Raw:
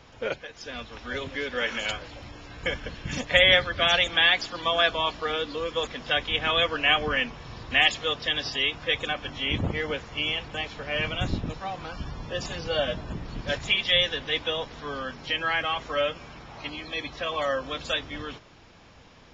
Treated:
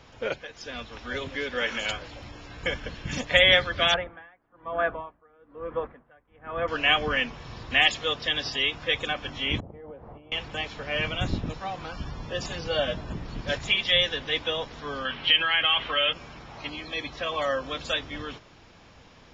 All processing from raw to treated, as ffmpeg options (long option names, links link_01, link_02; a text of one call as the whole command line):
ffmpeg -i in.wav -filter_complex "[0:a]asettb=1/sr,asplit=3[link_01][link_02][link_03];[link_01]atrim=end=3.944[link_04];[link_02]atrim=start=3.94:end=6.68,asetpts=PTS-STARTPTS,afade=type=in:duration=0.004:curve=qsin,afade=type=out:start_time=2.736:duration=0.004:curve=qsin,lowpass=frequency=1600:width=0.5412,lowpass=frequency=1600:width=1.3066,aeval=exprs='val(0)*pow(10,-30*(0.5-0.5*cos(2*PI*1.1*n/s))/20)':channel_layout=same[link_05];[link_03]atrim=start=6.676[link_06];[link_04][link_05]acrossfade=duration=0.004:curve1=hsin:curve2=qsin[link_07];[link_07][link_06]acrossfade=duration=0.004:curve1=qsin:curve2=hsin,asettb=1/sr,asplit=3[link_08][link_09][link_10];[link_08]atrim=end=9.604[link_11];[link_09]atrim=start=9.6:end=10.32,asetpts=PTS-STARTPTS,afade=type=in:duration=0.004:curve=qsin,afade=type=out:start_time=0.716:duration=0.004:curve=qsin,acompressor=threshold=-39dB:ratio=16:attack=3.2:release=140:knee=1:detection=peak,lowpass=frequency=740:width_type=q:width=1.6[link_12];[link_10]atrim=start=10.316[link_13];[link_11][link_12]acrossfade=duration=0.004:curve1=hsin:curve2=qsin[link_14];[link_14][link_13]acrossfade=duration=0.004:curve1=qsin:curve2=hsin,asettb=1/sr,asplit=3[link_15][link_16][link_17];[link_15]atrim=end=15.054[link_18];[link_16]atrim=start=15.05:end=16.13,asetpts=PTS-STARTPTS,afade=type=in:duration=0.004:curve=qsin,afade=type=out:start_time=1.076:duration=0.004:curve=qsin,equalizer=frequency=1600:width=0.74:gain=5,acompressor=threshold=-27dB:ratio=2.5:attack=3.2:release=140:knee=1:detection=peak,lowpass=frequency=3100:width_type=q:width=4.9[link_19];[link_17]atrim=start=16.126[link_20];[link_18][link_19]acrossfade=duration=0.004:curve1=hsin:curve2=qsin[link_21];[link_21][link_20]acrossfade=duration=0.004:curve1=qsin:curve2=hsin" out.wav